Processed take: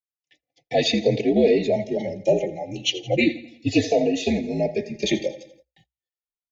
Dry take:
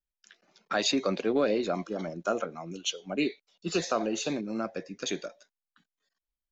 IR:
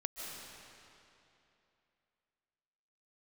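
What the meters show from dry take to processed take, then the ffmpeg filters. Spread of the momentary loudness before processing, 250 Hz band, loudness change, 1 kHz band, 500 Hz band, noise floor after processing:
9 LU, +8.5 dB, +8.0 dB, +2.0 dB, +9.5 dB, below −85 dBFS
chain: -filter_complex "[0:a]equalizer=frequency=930:width=0.38:gain=7.5,acrossover=split=6700[link_01][link_02];[link_02]acompressor=threshold=-50dB:ratio=4:attack=1:release=60[link_03];[link_01][link_03]amix=inputs=2:normalize=0,aecho=1:1:84|168|252|336|420:0.15|0.0763|0.0389|0.0198|0.0101,dynaudnorm=framelen=130:gausssize=7:maxgain=11dB,highshelf=frequency=5700:gain=-2.5,agate=range=-29dB:threshold=-51dB:ratio=16:detection=peak,asuperstop=centerf=1300:order=20:qfactor=1.4,afreqshift=-64,asplit=2[link_04][link_05];[link_05]adelay=3.4,afreqshift=-0.35[link_06];[link_04][link_06]amix=inputs=2:normalize=1"

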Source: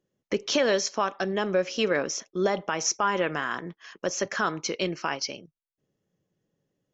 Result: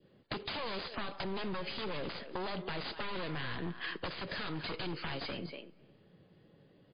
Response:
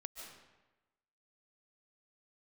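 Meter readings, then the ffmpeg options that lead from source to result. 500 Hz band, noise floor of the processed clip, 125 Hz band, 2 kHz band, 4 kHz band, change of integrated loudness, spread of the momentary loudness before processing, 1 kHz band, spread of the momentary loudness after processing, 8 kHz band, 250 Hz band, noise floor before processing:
−15.0 dB, −65 dBFS, −4.0 dB, −10.0 dB, −8.0 dB, −12.0 dB, 8 LU, −12.0 dB, 3 LU, can't be measured, −10.0 dB, below −85 dBFS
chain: -filter_complex "[0:a]aeval=exprs='(tanh(15.8*val(0)+0.4)-tanh(0.4))/15.8':channel_layout=same,acrossover=split=210|3900[link_01][link_02][link_03];[link_01]acompressor=threshold=-45dB:ratio=4[link_04];[link_02]acompressor=threshold=-42dB:ratio=4[link_05];[link_03]acompressor=threshold=-39dB:ratio=4[link_06];[link_04][link_05][link_06]amix=inputs=3:normalize=0,asplit=2[link_07][link_08];[link_08]adelay=240,highpass=300,lowpass=3400,asoftclip=type=hard:threshold=-33.5dB,volume=-15dB[link_09];[link_07][link_09]amix=inputs=2:normalize=0,adynamicequalizer=threshold=0.00178:dfrequency=1200:dqfactor=1:tfrequency=1200:tqfactor=1:attack=5:release=100:ratio=0.375:range=2:mode=cutabove:tftype=bell,aresample=16000,aeval=exprs='0.0112*(abs(mod(val(0)/0.0112+3,4)-2)-1)':channel_layout=same,aresample=44100,acompressor=threshold=-52dB:ratio=16,asplit=2[link_10][link_11];[1:a]atrim=start_sample=2205,highshelf=frequency=5100:gain=-11.5,adelay=90[link_12];[link_11][link_12]afir=irnorm=-1:irlink=0,volume=-16dB[link_13];[link_10][link_13]amix=inputs=2:normalize=0,volume=17dB" -ar 11025 -c:a libmp3lame -b:a 24k

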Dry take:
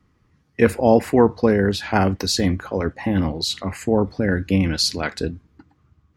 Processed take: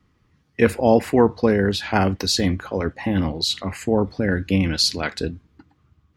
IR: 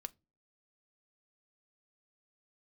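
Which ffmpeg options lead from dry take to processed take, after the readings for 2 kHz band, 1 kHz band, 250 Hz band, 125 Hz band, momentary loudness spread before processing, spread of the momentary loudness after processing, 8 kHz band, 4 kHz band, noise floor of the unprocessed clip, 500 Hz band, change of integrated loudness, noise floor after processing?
0.0 dB, −1.0 dB, −1.0 dB, −1.0 dB, 10 LU, 9 LU, 0.0 dB, +1.5 dB, −62 dBFS, −1.0 dB, −0.5 dB, −63 dBFS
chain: -af "equalizer=frequency=3300:width=1.3:gain=4,volume=-1dB"

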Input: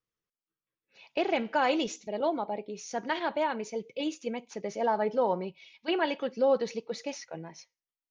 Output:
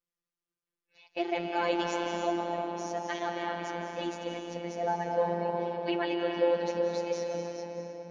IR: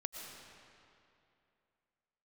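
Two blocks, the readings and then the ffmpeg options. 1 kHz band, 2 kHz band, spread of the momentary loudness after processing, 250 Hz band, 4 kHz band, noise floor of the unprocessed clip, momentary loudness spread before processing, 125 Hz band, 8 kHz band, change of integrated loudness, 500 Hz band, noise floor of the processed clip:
−1.0 dB, −1.5 dB, 9 LU, −1.0 dB, −1.5 dB, below −85 dBFS, 11 LU, +5.5 dB, can't be measured, −1.0 dB, −0.5 dB, below −85 dBFS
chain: -filter_complex "[1:a]atrim=start_sample=2205,asetrate=27342,aresample=44100[link_01];[0:a][link_01]afir=irnorm=-1:irlink=0,afftfilt=real='hypot(re,im)*cos(PI*b)':imag='0':win_size=1024:overlap=0.75"

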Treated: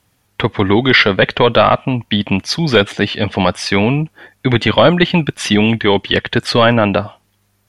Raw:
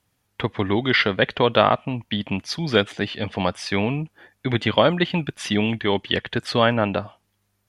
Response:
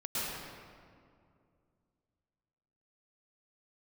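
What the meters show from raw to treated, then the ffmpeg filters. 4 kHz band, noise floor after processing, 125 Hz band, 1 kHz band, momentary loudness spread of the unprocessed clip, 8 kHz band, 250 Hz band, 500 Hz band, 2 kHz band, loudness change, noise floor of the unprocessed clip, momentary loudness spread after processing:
+8.0 dB, −61 dBFS, +9.0 dB, +7.5 dB, 10 LU, +10.0 dB, +9.0 dB, +8.0 dB, +8.5 dB, +8.5 dB, −71 dBFS, 9 LU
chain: -af "apsyclip=12dB,volume=-2dB"

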